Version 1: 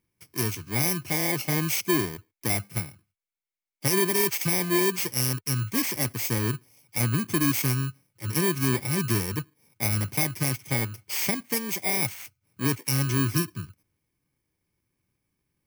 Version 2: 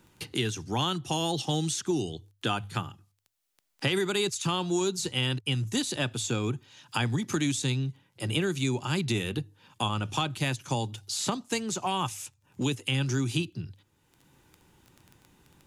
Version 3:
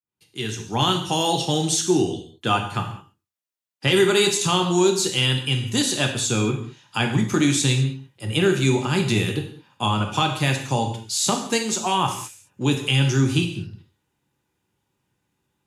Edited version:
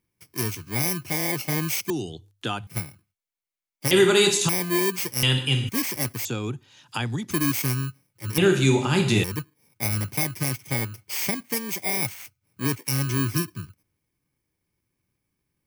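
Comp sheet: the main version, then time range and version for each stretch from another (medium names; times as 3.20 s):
1
1.90–2.67 s: from 2
3.91–4.49 s: from 3
5.23–5.69 s: from 3
6.25–7.31 s: from 2
8.38–9.24 s: from 3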